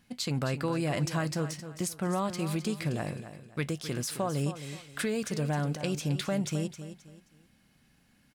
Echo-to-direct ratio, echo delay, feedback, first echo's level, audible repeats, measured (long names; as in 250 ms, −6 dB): −11.0 dB, 264 ms, 31%, −11.5 dB, 3